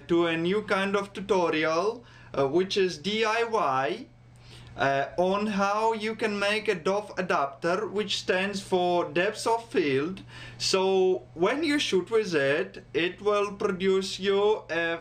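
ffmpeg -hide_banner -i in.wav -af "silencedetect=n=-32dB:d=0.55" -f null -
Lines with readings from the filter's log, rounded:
silence_start: 4.02
silence_end: 4.79 | silence_duration: 0.77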